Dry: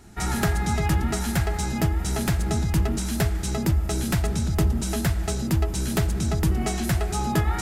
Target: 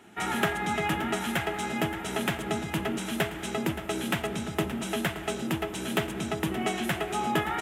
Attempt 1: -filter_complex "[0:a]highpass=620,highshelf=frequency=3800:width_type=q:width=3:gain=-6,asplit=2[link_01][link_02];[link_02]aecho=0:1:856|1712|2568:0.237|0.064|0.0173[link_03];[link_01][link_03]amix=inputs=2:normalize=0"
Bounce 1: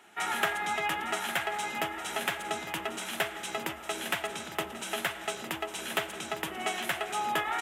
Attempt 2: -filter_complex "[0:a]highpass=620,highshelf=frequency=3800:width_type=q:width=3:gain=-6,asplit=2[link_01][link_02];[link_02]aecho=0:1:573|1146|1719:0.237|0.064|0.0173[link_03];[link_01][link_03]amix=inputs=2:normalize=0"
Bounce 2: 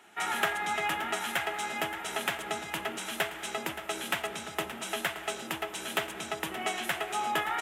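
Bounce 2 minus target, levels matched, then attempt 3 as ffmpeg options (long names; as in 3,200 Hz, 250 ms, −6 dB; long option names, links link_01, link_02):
250 Hz band −9.5 dB
-filter_complex "[0:a]highpass=250,highshelf=frequency=3800:width_type=q:width=3:gain=-6,asplit=2[link_01][link_02];[link_02]aecho=0:1:573|1146|1719:0.237|0.064|0.0173[link_03];[link_01][link_03]amix=inputs=2:normalize=0"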